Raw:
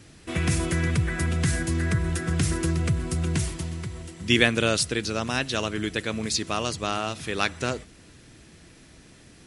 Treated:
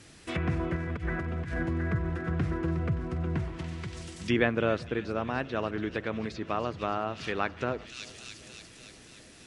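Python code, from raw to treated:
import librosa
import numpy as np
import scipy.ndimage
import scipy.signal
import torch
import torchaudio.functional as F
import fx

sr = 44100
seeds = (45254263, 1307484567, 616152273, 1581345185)

p1 = fx.over_compress(x, sr, threshold_db=-26.0, ratio=-0.5, at=(0.76, 1.69))
p2 = p1 + fx.echo_wet_highpass(p1, sr, ms=287, feedback_pct=66, hz=3300.0, wet_db=-7.5, dry=0)
p3 = fx.env_lowpass_down(p2, sr, base_hz=1300.0, full_db=-24.0)
p4 = fx.low_shelf(p3, sr, hz=340.0, db=-6.0)
y = fx.echo_filtered(p4, sr, ms=391, feedback_pct=79, hz=930.0, wet_db=-23.0)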